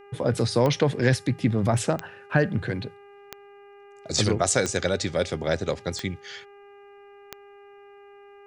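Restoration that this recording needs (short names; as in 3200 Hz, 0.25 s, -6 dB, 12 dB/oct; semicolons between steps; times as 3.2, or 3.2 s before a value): de-click; de-hum 403.1 Hz, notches 7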